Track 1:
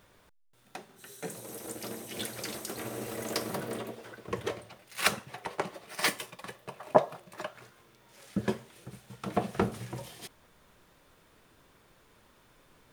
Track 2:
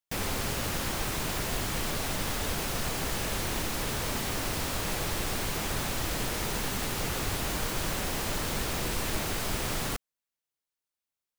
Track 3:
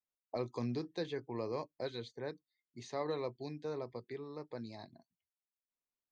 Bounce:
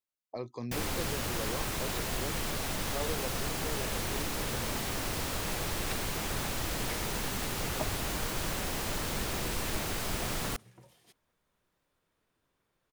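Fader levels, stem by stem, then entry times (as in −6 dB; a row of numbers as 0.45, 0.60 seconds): −17.0, −2.5, −1.0 decibels; 0.85, 0.60, 0.00 seconds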